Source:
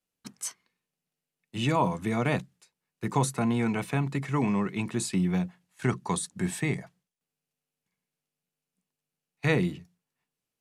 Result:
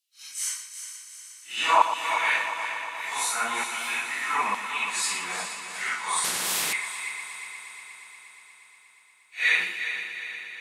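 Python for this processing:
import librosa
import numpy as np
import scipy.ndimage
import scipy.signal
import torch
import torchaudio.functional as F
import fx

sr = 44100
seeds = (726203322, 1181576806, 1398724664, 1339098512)

y = fx.phase_scramble(x, sr, seeds[0], window_ms=200)
y = fx.filter_lfo_highpass(y, sr, shape='saw_down', hz=1.1, low_hz=970.0, high_hz=3800.0, q=1.7)
y = fx.echo_heads(y, sr, ms=119, heads='first and third', feedback_pct=72, wet_db=-10.5)
y = fx.spectral_comp(y, sr, ratio=4.0, at=(6.24, 6.73))
y = F.gain(torch.from_numpy(y), 7.0).numpy()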